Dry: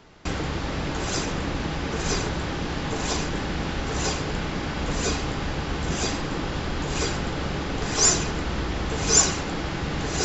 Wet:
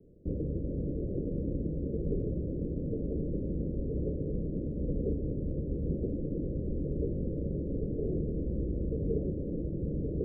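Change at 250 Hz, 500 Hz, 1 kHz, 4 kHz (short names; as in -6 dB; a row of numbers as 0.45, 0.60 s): -4.0 dB, -5.0 dB, under -35 dB, under -40 dB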